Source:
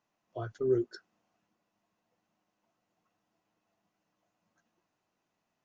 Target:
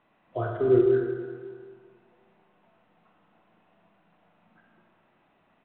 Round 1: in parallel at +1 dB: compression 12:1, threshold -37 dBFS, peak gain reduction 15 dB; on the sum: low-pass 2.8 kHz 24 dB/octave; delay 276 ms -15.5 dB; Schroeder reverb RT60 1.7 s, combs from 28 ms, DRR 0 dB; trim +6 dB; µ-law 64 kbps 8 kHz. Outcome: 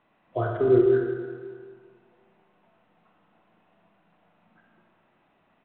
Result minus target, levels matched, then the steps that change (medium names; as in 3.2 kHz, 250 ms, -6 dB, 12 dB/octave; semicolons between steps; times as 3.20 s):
compression: peak gain reduction -10 dB
change: compression 12:1, threshold -48 dBFS, peak gain reduction 25 dB